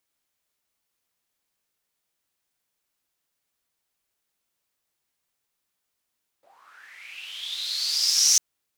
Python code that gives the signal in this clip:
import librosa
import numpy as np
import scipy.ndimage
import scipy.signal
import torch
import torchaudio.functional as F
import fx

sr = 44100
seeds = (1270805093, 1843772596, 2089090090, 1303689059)

y = fx.riser_noise(sr, seeds[0], length_s=1.95, colour='white', kind='bandpass', start_hz=550.0, end_hz=6000.0, q=8.4, swell_db=34.5, law='linear')